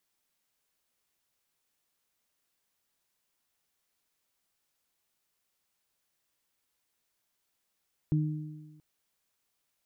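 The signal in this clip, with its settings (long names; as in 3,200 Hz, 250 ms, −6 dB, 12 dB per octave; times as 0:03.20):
harmonic partials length 0.68 s, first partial 153 Hz, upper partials −7 dB, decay 1.26 s, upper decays 1.33 s, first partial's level −22.5 dB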